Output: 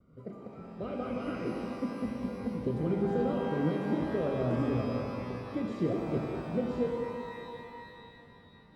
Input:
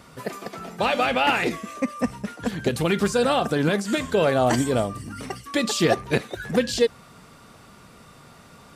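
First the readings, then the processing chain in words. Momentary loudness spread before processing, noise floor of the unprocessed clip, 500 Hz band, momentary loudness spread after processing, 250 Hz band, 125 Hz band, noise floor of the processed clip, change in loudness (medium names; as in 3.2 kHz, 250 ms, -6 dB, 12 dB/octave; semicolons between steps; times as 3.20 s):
14 LU, -49 dBFS, -9.5 dB, 15 LU, -6.0 dB, -5.5 dB, -56 dBFS, -9.5 dB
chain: boxcar filter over 51 samples; expander -50 dBFS; pitch-shifted reverb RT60 2.8 s, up +12 st, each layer -8 dB, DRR 0.5 dB; trim -7.5 dB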